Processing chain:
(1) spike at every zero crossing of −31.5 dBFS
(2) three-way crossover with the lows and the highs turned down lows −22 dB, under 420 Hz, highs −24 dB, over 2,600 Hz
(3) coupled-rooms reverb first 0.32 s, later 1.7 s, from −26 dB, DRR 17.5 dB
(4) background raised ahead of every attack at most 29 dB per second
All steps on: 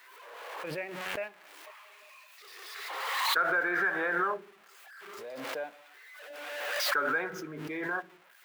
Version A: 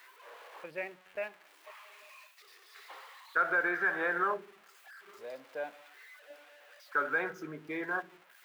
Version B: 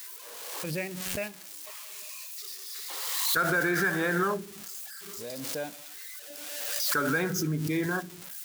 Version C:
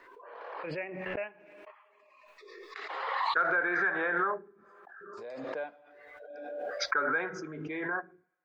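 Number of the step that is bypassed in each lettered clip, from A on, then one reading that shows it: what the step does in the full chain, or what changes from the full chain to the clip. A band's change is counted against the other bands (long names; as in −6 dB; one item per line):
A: 4, change in crest factor +2.0 dB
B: 2, 125 Hz band +13.5 dB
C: 1, distortion level −10 dB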